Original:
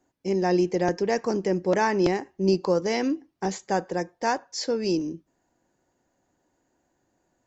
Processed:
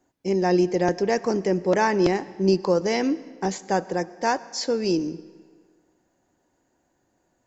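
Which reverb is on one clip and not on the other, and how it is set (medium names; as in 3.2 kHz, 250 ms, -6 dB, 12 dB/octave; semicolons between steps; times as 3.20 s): algorithmic reverb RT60 1.7 s, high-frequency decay 0.85×, pre-delay 60 ms, DRR 18.5 dB; trim +2 dB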